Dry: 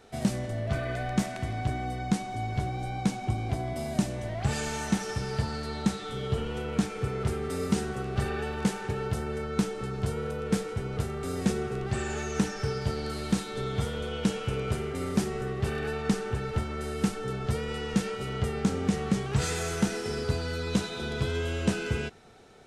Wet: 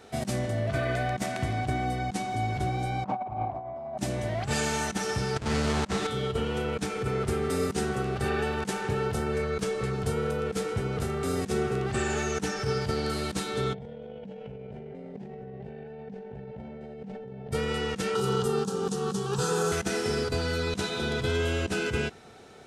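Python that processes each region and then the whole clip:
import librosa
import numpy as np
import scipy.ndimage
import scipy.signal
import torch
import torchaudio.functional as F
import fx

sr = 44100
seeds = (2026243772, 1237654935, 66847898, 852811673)

y = fx.chain(x, sr, fx.lowpass(hz=1700.0, slope=12),
    fx.band_shelf(hz=820.0, db=13.0, octaves=1.2),
    fx.doppler_dist(depth_ms=0.29), at=(3.04, 3.98))
y = fx.chain(y, sr, fx.halfwave_hold(),
    fx.lowpass(hz=8700.0, slope=24), at=(5.36, 6.07))
y = fx.chain(y, sr, fx.comb(ms=1.8, depth=0.42),
    fx.doppler_dist(depth_ms=0.24), at=(9.34, 9.94))
y = fx.chain(y, sr, fx.lowpass(hz=1400.0, slope=12),
    fx.fixed_phaser(hz=330.0, stages=6),
    fx.env_flatten(amount_pct=100), at=(13.74, 17.52))
y = fx.chain(y, sr, fx.highpass(hz=110.0, slope=6),
    fx.fixed_phaser(hz=420.0, stages=8),
    fx.band_squash(depth_pct=100), at=(18.15, 19.72))
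y = fx.highpass(y, sr, hz=74.0, slope=6)
y = fx.over_compress(y, sr, threshold_db=-30.0, ratio=-0.5)
y = y * librosa.db_to_amplitude(1.0)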